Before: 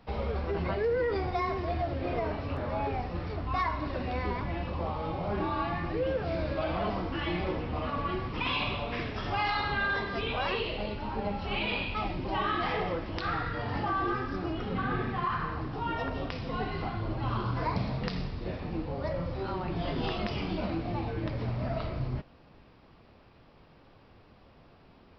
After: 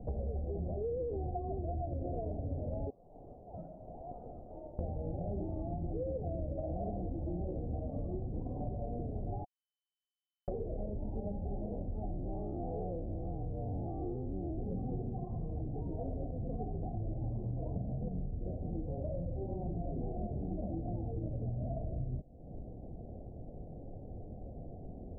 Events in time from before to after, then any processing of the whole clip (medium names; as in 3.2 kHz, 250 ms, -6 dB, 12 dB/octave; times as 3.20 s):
2.90–4.79 s: frequency inversion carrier 3.5 kHz
9.44–10.48 s: bleep 3.04 kHz -7.5 dBFS
12.05–14.58 s: spectral blur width 88 ms
whole clip: Chebyshev low-pass 740 Hz, order 6; bass shelf 100 Hz +9 dB; compression 4:1, threshold -47 dBFS; trim +9 dB